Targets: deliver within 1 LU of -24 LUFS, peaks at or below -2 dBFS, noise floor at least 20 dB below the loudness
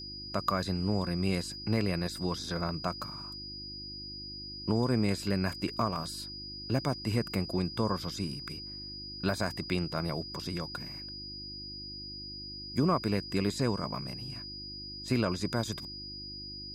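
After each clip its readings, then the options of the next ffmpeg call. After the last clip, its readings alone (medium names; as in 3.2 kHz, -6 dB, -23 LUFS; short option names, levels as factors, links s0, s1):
hum 50 Hz; highest harmonic 350 Hz; hum level -48 dBFS; steady tone 4.9 kHz; tone level -41 dBFS; loudness -33.5 LUFS; peak level -15.5 dBFS; loudness target -24.0 LUFS
-> -af "bandreject=f=50:t=h:w=4,bandreject=f=100:t=h:w=4,bandreject=f=150:t=h:w=4,bandreject=f=200:t=h:w=4,bandreject=f=250:t=h:w=4,bandreject=f=300:t=h:w=4,bandreject=f=350:t=h:w=4"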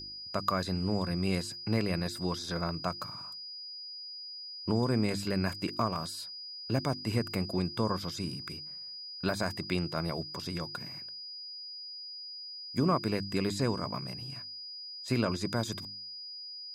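hum not found; steady tone 4.9 kHz; tone level -41 dBFS
-> -af "bandreject=f=4900:w=30"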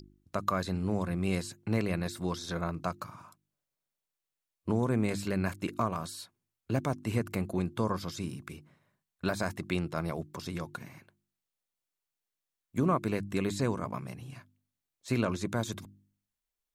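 steady tone not found; loudness -33.5 LUFS; peak level -15.0 dBFS; loudness target -24.0 LUFS
-> -af "volume=2.99"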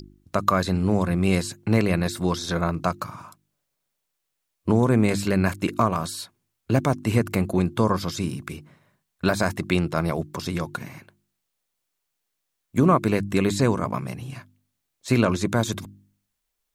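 loudness -24.0 LUFS; peak level -5.5 dBFS; noise floor -79 dBFS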